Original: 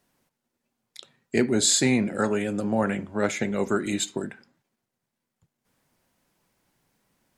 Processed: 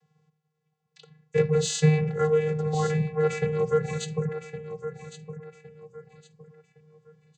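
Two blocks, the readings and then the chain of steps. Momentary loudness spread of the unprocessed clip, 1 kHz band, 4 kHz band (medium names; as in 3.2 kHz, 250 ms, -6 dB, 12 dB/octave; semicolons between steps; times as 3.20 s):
9 LU, -1.0 dB, -7.5 dB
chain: vocoder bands 16, square 154 Hz; feedback delay 1112 ms, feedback 30%, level -12 dB; in parallel at -11.5 dB: saturation -25.5 dBFS, distortion -8 dB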